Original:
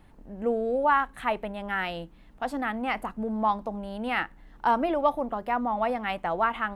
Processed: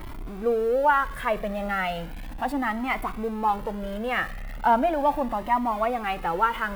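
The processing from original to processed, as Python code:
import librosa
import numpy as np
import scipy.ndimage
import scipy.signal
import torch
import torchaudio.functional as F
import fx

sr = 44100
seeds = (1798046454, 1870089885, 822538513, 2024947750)

p1 = x + 0.5 * 10.0 ** (-36.0 / 20.0) * np.sign(x)
p2 = fx.peak_eq(p1, sr, hz=6200.0, db=-9.0, octaves=1.5)
p3 = p2 + fx.echo_thinned(p2, sr, ms=60, feedback_pct=83, hz=880.0, wet_db=-21, dry=0)
p4 = fx.comb_cascade(p3, sr, direction='rising', hz=0.36)
y = F.gain(torch.from_numpy(p4), 6.5).numpy()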